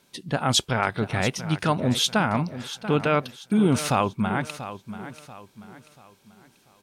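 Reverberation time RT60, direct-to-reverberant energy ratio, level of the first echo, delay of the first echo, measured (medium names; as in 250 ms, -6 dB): no reverb, no reverb, -13.0 dB, 687 ms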